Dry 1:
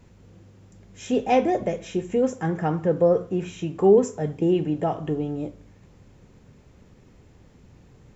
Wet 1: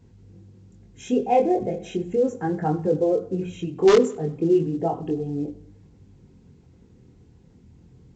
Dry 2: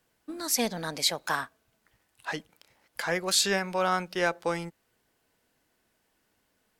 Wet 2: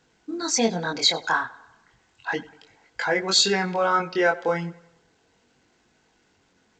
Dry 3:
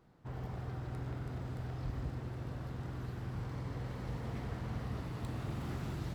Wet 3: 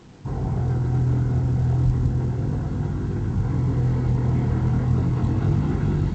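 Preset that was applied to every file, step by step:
spectral envelope exaggerated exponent 1.5
notch filter 5,300 Hz, Q 11
notch comb filter 600 Hz
in parallel at −5 dB: wrap-around overflow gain 9.5 dB
on the sum: chorus effect 0.34 Hz, delay 20 ms, depth 5 ms
tape delay 96 ms, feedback 53%, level −20 dB, low-pass 5,100 Hz
A-law companding 128 kbit/s 16,000 Hz
loudness normalisation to −23 LKFS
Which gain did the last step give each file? +0.5, +6.5, +18.5 decibels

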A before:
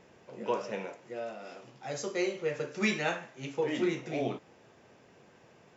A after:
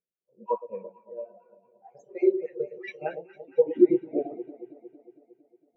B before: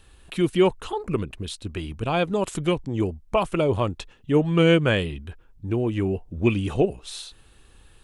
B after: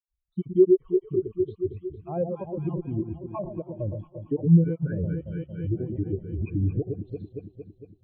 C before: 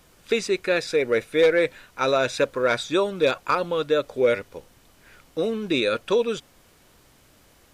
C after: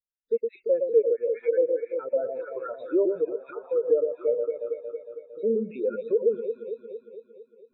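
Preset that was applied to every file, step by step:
time-frequency cells dropped at random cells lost 37%
delay that swaps between a low-pass and a high-pass 114 ms, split 920 Hz, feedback 90%, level −6 dB
treble cut that deepens with the level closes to 1,400 Hz, closed at −18 dBFS
brickwall limiter −18 dBFS
every bin expanded away from the loudest bin 2.5 to 1
loudness normalisation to −27 LKFS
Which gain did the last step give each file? +11.0, +10.0, +7.0 decibels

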